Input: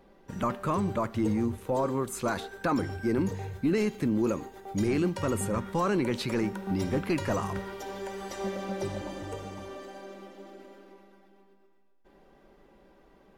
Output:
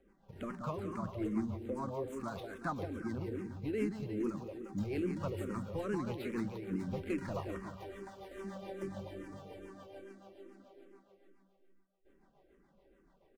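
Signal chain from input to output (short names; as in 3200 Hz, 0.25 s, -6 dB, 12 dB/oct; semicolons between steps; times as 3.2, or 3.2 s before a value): median filter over 9 samples; on a send: feedback echo 0.177 s, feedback 51%, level -6 dB; on the sum: rotary speaker horn 7 Hz; endless phaser -2.4 Hz; gain -5.5 dB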